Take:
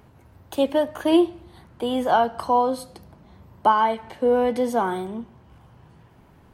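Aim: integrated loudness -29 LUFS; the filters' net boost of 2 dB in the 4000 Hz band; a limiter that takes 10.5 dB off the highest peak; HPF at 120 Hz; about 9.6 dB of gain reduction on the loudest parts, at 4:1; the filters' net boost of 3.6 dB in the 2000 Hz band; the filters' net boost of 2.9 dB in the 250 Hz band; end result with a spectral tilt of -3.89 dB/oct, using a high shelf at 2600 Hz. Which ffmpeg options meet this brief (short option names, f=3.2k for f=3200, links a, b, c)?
-af "highpass=120,equalizer=f=250:t=o:g=4,equalizer=f=2k:t=o:g=7.5,highshelf=f=2.6k:g=-7.5,equalizer=f=4k:t=o:g=5.5,acompressor=threshold=-22dB:ratio=4,volume=1.5dB,alimiter=limit=-19.5dB:level=0:latency=1"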